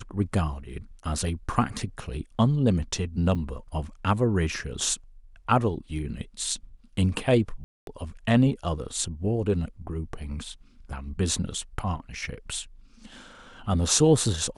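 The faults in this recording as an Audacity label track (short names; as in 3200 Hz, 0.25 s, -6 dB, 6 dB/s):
3.350000	3.360000	gap 5.3 ms
7.640000	7.870000	gap 0.232 s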